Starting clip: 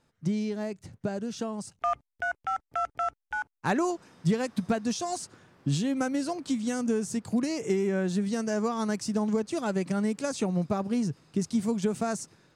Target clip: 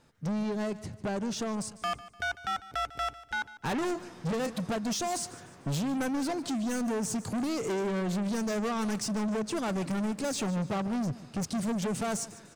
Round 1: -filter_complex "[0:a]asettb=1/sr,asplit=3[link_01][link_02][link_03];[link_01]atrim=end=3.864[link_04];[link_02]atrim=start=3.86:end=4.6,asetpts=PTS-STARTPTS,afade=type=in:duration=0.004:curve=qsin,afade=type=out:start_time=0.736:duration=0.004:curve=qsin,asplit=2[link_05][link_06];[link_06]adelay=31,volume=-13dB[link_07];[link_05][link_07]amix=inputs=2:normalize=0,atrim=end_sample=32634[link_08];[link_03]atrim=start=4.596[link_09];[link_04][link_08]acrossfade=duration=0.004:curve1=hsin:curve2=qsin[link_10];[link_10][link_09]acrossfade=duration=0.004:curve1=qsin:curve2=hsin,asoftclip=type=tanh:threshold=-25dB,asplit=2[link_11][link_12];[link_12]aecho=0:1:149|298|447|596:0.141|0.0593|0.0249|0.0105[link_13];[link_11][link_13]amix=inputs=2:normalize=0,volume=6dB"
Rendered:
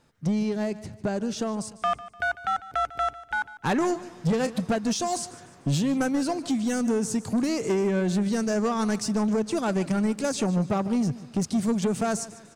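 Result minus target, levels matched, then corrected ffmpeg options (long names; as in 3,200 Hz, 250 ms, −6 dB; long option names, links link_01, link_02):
soft clipping: distortion −7 dB
-filter_complex "[0:a]asettb=1/sr,asplit=3[link_01][link_02][link_03];[link_01]atrim=end=3.864[link_04];[link_02]atrim=start=3.86:end=4.6,asetpts=PTS-STARTPTS,afade=type=in:duration=0.004:curve=qsin,afade=type=out:start_time=0.736:duration=0.004:curve=qsin,asplit=2[link_05][link_06];[link_06]adelay=31,volume=-13dB[link_07];[link_05][link_07]amix=inputs=2:normalize=0,atrim=end_sample=32634[link_08];[link_03]atrim=start=4.596[link_09];[link_04][link_08]acrossfade=duration=0.004:curve1=hsin:curve2=qsin[link_10];[link_10][link_09]acrossfade=duration=0.004:curve1=qsin:curve2=hsin,asoftclip=type=tanh:threshold=-34.5dB,asplit=2[link_11][link_12];[link_12]aecho=0:1:149|298|447|596:0.141|0.0593|0.0249|0.0105[link_13];[link_11][link_13]amix=inputs=2:normalize=0,volume=6dB"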